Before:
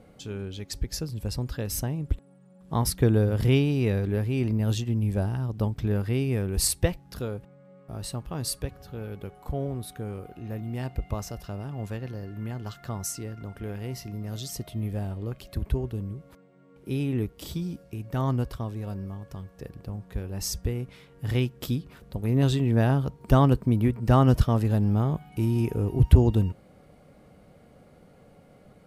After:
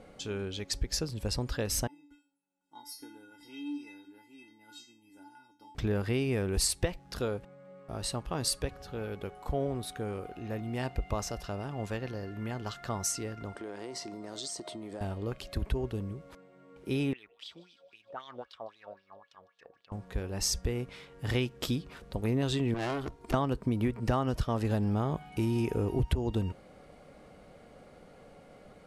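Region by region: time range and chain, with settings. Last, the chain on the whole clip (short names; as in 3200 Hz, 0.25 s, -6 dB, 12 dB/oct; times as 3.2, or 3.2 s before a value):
1.87–5.75 tone controls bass -12 dB, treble +3 dB + resonator 290 Hz, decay 0.37 s, harmonics odd, mix 100%
13.55–15.01 speaker cabinet 240–9500 Hz, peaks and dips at 340 Hz +8 dB, 630 Hz +4 dB, 970 Hz +6 dB, 2600 Hz -6 dB, 4300 Hz +4 dB, 8400 Hz +8 dB + compressor, threshold -37 dBFS
17.13–19.92 wah 3.8 Hz 550–3800 Hz, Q 4.4 + thin delay 0.154 s, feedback 60%, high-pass 3000 Hz, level -19 dB
22.74–23.34 comb 2.9 ms, depth 69% + tube stage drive 31 dB, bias 0.6
whole clip: LPF 9000 Hz 12 dB/oct; bell 120 Hz -8.5 dB 2.3 oct; compressor 12:1, threshold -28 dBFS; gain +3.5 dB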